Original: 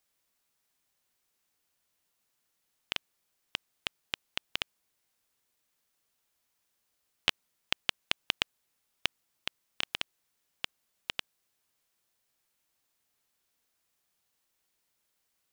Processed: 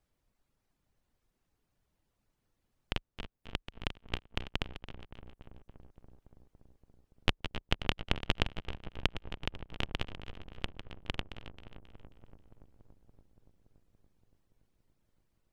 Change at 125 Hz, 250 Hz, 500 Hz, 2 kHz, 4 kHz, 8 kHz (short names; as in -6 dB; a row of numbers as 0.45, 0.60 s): +16.5, +11.0, +6.5, -3.0, -5.0, -8.5 dB